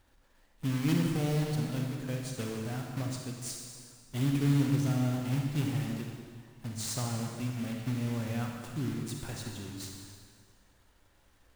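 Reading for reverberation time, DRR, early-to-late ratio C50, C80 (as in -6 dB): 1.7 s, 1.0 dB, 2.0 dB, 3.5 dB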